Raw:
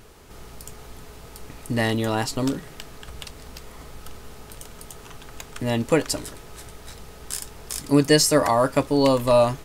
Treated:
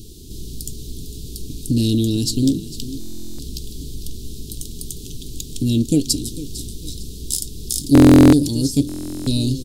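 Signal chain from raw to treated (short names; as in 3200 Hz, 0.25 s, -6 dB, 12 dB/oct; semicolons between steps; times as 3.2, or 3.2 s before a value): elliptic band-stop 340–3700 Hz, stop band 40 dB; in parallel at -2 dB: compressor, threshold -37 dBFS, peak gain reduction 21 dB; on the sum: feedback echo 0.452 s, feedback 36%, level -15.5 dB; stuck buffer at 2.99/7.93/8.87, samples 1024, times 16; Doppler distortion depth 0.12 ms; gain +7 dB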